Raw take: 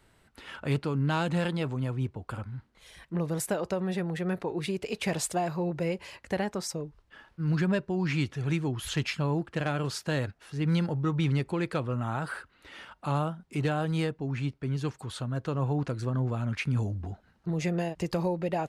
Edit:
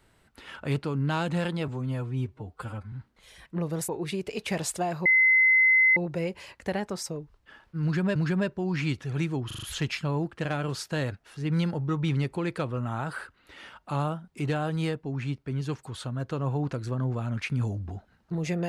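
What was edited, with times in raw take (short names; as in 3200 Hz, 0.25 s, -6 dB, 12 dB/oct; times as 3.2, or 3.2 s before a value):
1.68–2.51 stretch 1.5×
3.47–4.44 cut
5.61 add tone 2050 Hz -16.5 dBFS 0.91 s
7.47–7.8 loop, 2 plays
8.78 stutter 0.04 s, 5 plays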